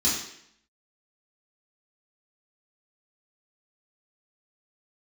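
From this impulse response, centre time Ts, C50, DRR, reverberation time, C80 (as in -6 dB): 49 ms, 3.0 dB, -8.5 dB, 0.70 s, 6.0 dB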